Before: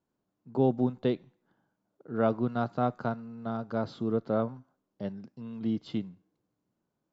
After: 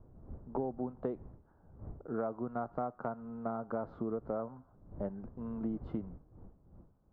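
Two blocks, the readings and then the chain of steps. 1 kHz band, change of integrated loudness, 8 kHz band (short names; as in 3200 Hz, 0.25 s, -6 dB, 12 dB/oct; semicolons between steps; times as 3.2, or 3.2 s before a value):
-6.0 dB, -8.0 dB, n/a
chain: wind noise 110 Hz -47 dBFS; EQ curve 120 Hz 0 dB, 720 Hz +9 dB, 1300 Hz +7 dB, 3300 Hz -20 dB, 5000 Hz -25 dB; compressor 10:1, threshold -29 dBFS, peak gain reduction 15.5 dB; gain -3.5 dB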